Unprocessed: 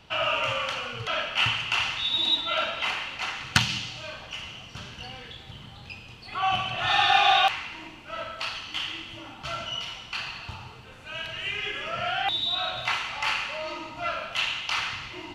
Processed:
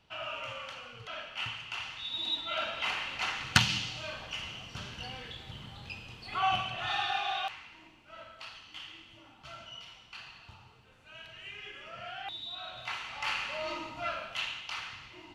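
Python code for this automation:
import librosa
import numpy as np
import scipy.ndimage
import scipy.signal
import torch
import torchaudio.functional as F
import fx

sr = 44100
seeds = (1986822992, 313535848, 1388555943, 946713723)

y = fx.gain(x, sr, db=fx.line((1.87, -13.0), (3.19, -2.0), (6.38, -2.0), (7.25, -14.0), (12.6, -14.0), (13.71, -2.0), (14.8, -11.5)))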